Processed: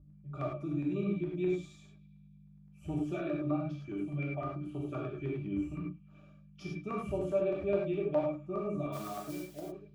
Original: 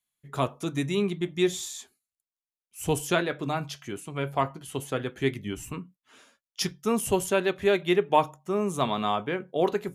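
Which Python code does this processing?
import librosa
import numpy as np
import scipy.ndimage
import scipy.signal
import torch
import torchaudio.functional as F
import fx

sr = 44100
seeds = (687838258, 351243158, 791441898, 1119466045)

p1 = fx.fade_out_tail(x, sr, length_s=1.87)
p2 = fx.add_hum(p1, sr, base_hz=50, snr_db=21)
p3 = fx.octave_resonator(p2, sr, note='D', decay_s=0.13)
p4 = fx.over_compress(p3, sr, threshold_db=-42.0, ratio=-1.0)
p5 = p3 + (p4 * librosa.db_to_amplitude(-1.0))
p6 = fx.mod_noise(p5, sr, seeds[0], snr_db=12, at=(8.92, 9.59), fade=0.02)
p7 = fx.peak_eq(p6, sr, hz=82.0, db=-6.0, octaves=2.7)
p8 = fx.echo_banded(p7, sr, ms=74, feedback_pct=78, hz=2900.0, wet_db=-22.0)
p9 = fx.filter_lfo_notch(p8, sr, shape='saw_down', hz=9.7, low_hz=690.0, high_hz=3000.0, q=0.85)
p10 = fx.high_shelf(p9, sr, hz=5200.0, db=-5.5)
y = fx.rev_gated(p10, sr, seeds[1], gate_ms=130, shape='flat', drr_db=-3.0)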